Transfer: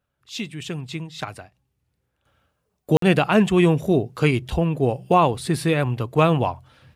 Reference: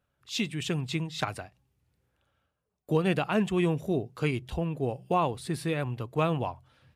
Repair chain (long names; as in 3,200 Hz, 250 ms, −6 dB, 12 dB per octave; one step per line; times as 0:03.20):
repair the gap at 0:02.97, 53 ms
level 0 dB, from 0:02.25 −9.5 dB